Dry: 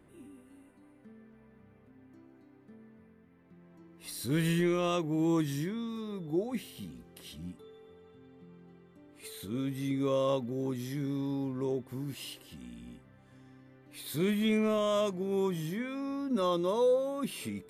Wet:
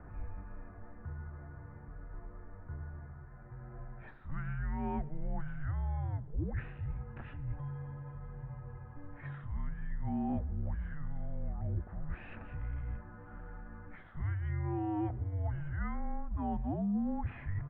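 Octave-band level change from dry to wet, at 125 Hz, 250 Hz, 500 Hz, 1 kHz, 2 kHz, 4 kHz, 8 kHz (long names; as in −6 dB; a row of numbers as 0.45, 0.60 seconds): +1.5 dB, −7.0 dB, −17.0 dB, −4.5 dB, −6.0 dB, below −25 dB, below −30 dB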